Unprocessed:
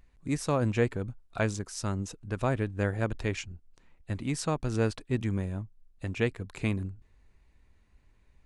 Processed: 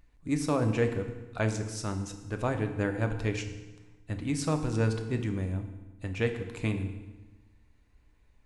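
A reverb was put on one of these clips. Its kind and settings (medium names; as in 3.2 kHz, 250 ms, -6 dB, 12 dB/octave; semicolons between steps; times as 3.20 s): FDN reverb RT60 1.2 s, low-frequency decay 1.2×, high-frequency decay 0.85×, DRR 5.5 dB; trim -1.5 dB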